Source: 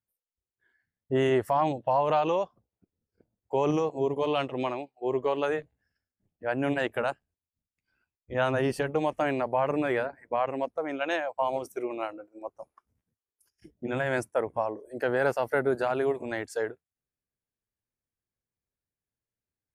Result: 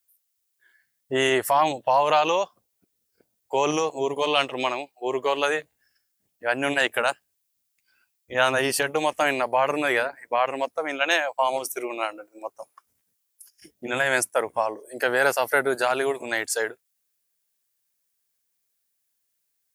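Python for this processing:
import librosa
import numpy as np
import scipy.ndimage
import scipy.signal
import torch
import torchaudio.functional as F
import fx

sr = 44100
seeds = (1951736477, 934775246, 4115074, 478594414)

y = fx.tilt_eq(x, sr, slope=4.0)
y = F.gain(torch.from_numpy(y), 6.5).numpy()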